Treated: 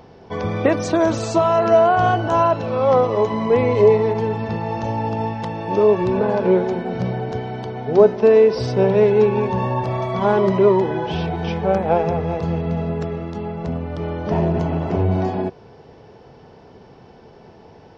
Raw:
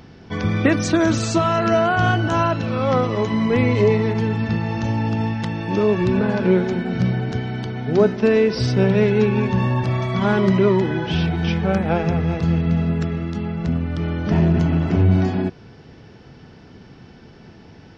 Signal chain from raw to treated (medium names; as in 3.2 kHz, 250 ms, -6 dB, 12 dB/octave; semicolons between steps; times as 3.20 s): high-order bell 650 Hz +10 dB; trim -4.5 dB